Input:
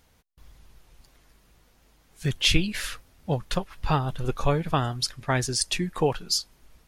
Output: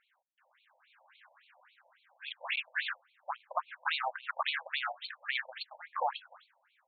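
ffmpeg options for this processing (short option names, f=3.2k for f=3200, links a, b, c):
-filter_complex "[0:a]equalizer=f=100:t=o:w=0.33:g=8,equalizer=f=1.6k:t=o:w=0.33:g=7,equalizer=f=5k:t=o:w=0.33:g=-11,equalizer=f=10k:t=o:w=0.33:g=10,dynaudnorm=f=400:g=5:m=13.5dB,asettb=1/sr,asplit=3[a][b][c];[a]atrim=end=2.784[d];[b]atrim=start=2.78:end=4.7,asetpts=PTS-STARTPTS,afade=t=in:d=0.004:c=qsin,afade=t=out:st=1.916:d=0.004:c=qsin,aeval=exprs='0.841*(cos(1*acos(clip(val(0)/0.841,-1,1)))-cos(1*PI/2))+0.15*(cos(4*acos(clip(val(0)/0.841,-1,1)))-cos(4*PI/2))+0.237*(cos(6*acos(clip(val(0)/0.841,-1,1)))-cos(6*PI/2))+0.188*(cos(8*acos(clip(val(0)/0.841,-1,1)))-cos(8*PI/2))':c=same[e];[c]atrim=start=4.696[f];[d][e]acrossfade=d=0.004:c1=hsin:c2=qsin[g];[g][f]acrossfade=d=0.004:c1=qsin:c2=hsin,aeval=exprs='clip(val(0),-1,0.0794)':c=same,afftfilt=real='re*between(b*sr/1024,670*pow(3200/670,0.5+0.5*sin(2*PI*3.6*pts/sr))/1.41,670*pow(3200/670,0.5+0.5*sin(2*PI*3.6*pts/sr))*1.41)':imag='im*between(b*sr/1024,670*pow(3200/670,0.5+0.5*sin(2*PI*3.6*pts/sr))/1.41,670*pow(3200/670,0.5+0.5*sin(2*PI*3.6*pts/sr))*1.41)':win_size=1024:overlap=0.75,volume=-3.5dB"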